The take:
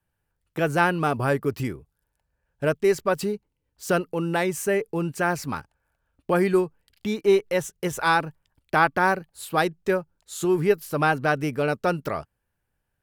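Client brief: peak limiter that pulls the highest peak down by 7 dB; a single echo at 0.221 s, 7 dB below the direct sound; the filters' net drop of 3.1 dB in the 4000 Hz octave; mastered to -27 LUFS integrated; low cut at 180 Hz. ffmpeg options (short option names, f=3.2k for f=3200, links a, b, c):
-af "highpass=180,equalizer=f=4k:t=o:g=-4,alimiter=limit=-12dB:level=0:latency=1,aecho=1:1:221:0.447,volume=-1dB"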